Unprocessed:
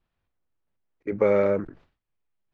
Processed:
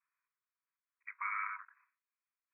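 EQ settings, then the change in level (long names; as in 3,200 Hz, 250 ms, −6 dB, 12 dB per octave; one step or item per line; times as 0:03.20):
linear-phase brick-wall band-pass 940–2,600 Hz
−2.5 dB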